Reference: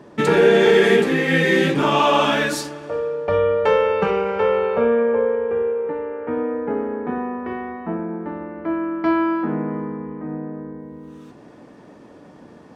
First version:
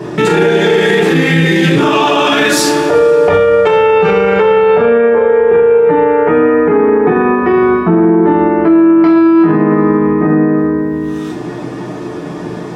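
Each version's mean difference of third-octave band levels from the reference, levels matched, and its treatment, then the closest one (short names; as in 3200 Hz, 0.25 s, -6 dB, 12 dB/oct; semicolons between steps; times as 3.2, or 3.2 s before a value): 5.0 dB: compressor, threshold -22 dBFS, peak gain reduction 12 dB; two-slope reverb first 0.33 s, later 3.3 s, from -28 dB, DRR -5 dB; maximiser +16 dB; gain -1 dB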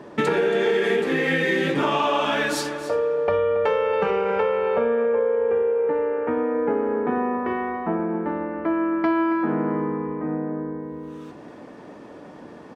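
3.0 dB: tone controls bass -5 dB, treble -4 dB; compressor, threshold -23 dBFS, peak gain reduction 12.5 dB; echo 0.277 s -14.5 dB; gain +4 dB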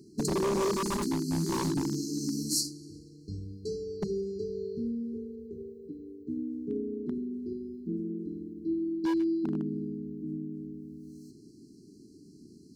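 11.5 dB: brick-wall FIR band-stop 430–4000 Hz; wavefolder -16.5 dBFS; spectral gain 0.73–3.65, 370–820 Hz -8 dB; high shelf 2300 Hz +9 dB; gain -7 dB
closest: second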